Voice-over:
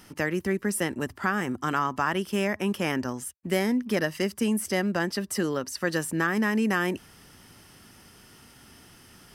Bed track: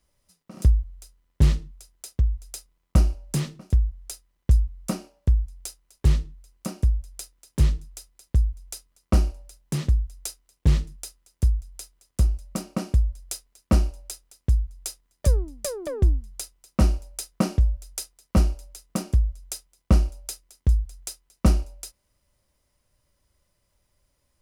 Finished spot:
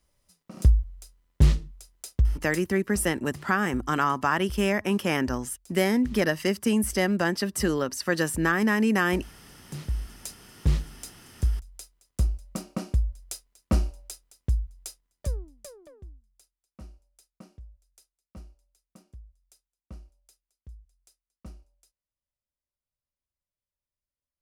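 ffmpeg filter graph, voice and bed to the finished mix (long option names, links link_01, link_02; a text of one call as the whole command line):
ffmpeg -i stem1.wav -i stem2.wav -filter_complex "[0:a]adelay=2250,volume=2dB[link_01];[1:a]volume=15.5dB,afade=type=out:start_time=2.5:duration=0.33:silence=0.105925,afade=type=in:start_time=9.37:duration=1.06:silence=0.158489,afade=type=out:start_time=14.42:duration=1.61:silence=0.0749894[link_02];[link_01][link_02]amix=inputs=2:normalize=0" out.wav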